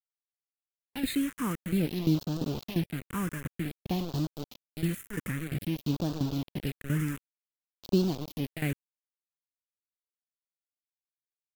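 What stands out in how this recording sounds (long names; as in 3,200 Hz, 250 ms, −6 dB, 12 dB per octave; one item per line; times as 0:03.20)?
tremolo saw down 2.9 Hz, depth 80%
a quantiser's noise floor 6 bits, dither none
phaser sweep stages 4, 0.53 Hz, lowest notch 710–2,000 Hz
AAC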